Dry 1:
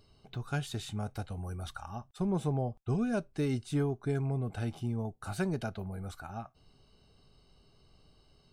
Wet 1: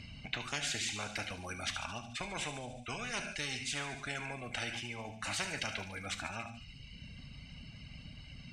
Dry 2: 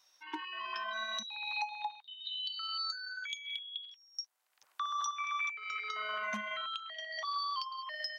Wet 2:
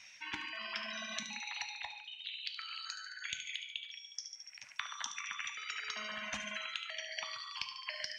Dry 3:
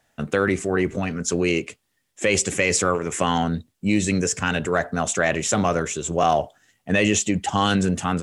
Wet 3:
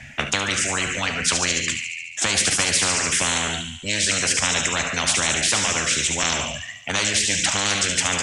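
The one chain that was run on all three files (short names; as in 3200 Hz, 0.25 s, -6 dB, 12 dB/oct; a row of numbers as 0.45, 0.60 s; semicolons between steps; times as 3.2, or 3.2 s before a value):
HPF 41 Hz; high shelf 5000 Hz -8 dB; reverb removal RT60 1.1 s; EQ curve 140 Hz 0 dB, 270 Hz -8 dB, 390 Hz -29 dB, 560 Hz -17 dB, 1200 Hz -18 dB, 2300 Hz +6 dB, 3700 Hz -11 dB, 7000 Hz -6 dB, 13000 Hz -24 dB; thin delay 72 ms, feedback 65%, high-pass 4200 Hz, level -9 dB; non-linear reverb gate 0.19 s falling, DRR 9 dB; spectral compressor 10:1; gain +5.5 dB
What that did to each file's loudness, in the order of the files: -3.0, -3.5, +2.0 LU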